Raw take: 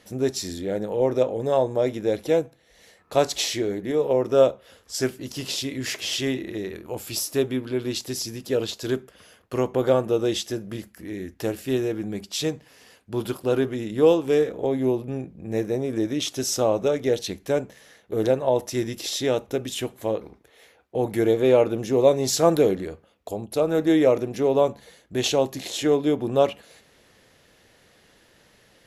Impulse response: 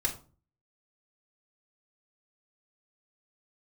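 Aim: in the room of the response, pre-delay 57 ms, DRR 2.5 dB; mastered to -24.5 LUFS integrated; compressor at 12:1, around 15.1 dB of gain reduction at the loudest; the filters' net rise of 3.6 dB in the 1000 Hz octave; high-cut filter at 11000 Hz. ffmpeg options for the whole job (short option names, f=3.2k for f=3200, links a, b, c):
-filter_complex "[0:a]lowpass=11k,equalizer=f=1k:t=o:g=5,acompressor=threshold=-26dB:ratio=12,asplit=2[a][b];[1:a]atrim=start_sample=2205,adelay=57[c];[b][c]afir=irnorm=-1:irlink=0,volume=-8dB[d];[a][d]amix=inputs=2:normalize=0,volume=5dB"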